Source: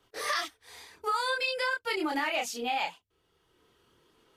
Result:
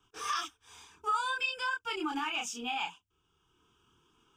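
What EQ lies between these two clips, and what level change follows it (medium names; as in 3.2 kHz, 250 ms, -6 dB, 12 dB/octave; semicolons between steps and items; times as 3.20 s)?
static phaser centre 2.9 kHz, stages 8; 0.0 dB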